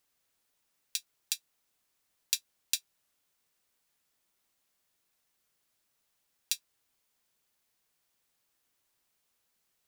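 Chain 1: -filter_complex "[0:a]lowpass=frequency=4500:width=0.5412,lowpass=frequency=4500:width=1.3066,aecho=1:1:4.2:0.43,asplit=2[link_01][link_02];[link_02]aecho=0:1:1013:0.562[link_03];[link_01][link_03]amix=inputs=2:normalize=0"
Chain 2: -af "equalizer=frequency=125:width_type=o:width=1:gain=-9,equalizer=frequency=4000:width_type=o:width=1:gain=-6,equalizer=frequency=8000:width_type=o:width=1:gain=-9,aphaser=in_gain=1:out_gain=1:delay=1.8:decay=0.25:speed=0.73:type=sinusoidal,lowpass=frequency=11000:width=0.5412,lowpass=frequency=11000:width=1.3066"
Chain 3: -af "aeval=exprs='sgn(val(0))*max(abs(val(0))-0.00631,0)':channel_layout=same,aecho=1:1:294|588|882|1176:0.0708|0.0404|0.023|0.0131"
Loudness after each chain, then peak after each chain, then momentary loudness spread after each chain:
−42.0, −43.5, −36.5 LKFS; −14.5, −13.0, −4.0 dBFS; 8, 5, 5 LU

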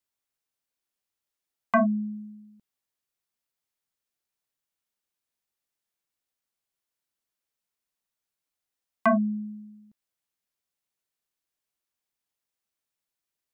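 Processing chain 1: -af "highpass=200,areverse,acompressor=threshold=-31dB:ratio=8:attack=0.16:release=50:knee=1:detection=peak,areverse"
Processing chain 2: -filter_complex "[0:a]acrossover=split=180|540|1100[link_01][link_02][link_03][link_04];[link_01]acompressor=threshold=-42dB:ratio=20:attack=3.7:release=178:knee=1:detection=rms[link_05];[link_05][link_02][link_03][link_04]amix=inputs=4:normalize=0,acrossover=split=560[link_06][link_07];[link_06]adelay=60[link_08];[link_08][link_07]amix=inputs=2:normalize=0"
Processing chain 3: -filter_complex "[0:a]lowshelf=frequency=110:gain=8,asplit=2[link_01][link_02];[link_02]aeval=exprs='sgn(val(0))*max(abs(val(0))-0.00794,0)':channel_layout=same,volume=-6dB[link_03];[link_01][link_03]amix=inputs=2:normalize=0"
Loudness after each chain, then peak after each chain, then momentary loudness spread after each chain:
−38.0, −29.0, −22.0 LKFS; −28.5, −12.5, −9.0 dBFS; 18, 17, 17 LU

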